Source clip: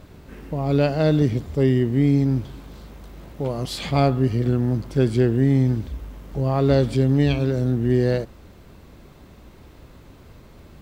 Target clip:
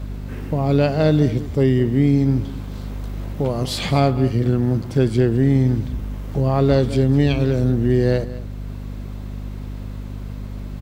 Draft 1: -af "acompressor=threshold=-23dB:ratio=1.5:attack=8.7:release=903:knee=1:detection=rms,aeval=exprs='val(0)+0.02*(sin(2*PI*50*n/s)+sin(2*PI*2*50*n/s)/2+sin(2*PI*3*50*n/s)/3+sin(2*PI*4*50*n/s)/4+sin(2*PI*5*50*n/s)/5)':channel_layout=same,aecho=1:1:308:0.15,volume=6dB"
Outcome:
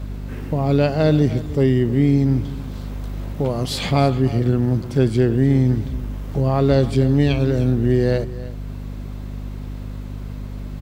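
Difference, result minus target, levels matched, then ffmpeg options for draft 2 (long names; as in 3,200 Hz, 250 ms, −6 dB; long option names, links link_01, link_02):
echo 99 ms late
-af "acompressor=threshold=-23dB:ratio=1.5:attack=8.7:release=903:knee=1:detection=rms,aeval=exprs='val(0)+0.02*(sin(2*PI*50*n/s)+sin(2*PI*2*50*n/s)/2+sin(2*PI*3*50*n/s)/3+sin(2*PI*4*50*n/s)/4+sin(2*PI*5*50*n/s)/5)':channel_layout=same,aecho=1:1:209:0.15,volume=6dB"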